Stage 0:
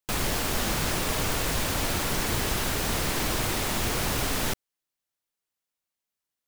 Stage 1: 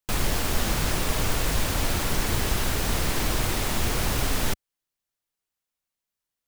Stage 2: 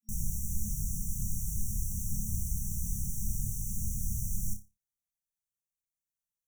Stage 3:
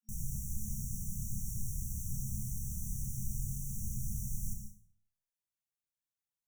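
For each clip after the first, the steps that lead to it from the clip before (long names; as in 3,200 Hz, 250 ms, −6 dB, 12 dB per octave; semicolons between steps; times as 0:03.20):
low-shelf EQ 81 Hz +8 dB
brick-wall band-stop 220–5,600 Hz; on a send: flutter between parallel walls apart 5 metres, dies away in 0.25 s; on the sum: level −7.5 dB
parametric band 130 Hz +6.5 dB 0.21 octaves; on a send at −6 dB: convolution reverb RT60 0.50 s, pre-delay 93 ms; on the sum: level −6 dB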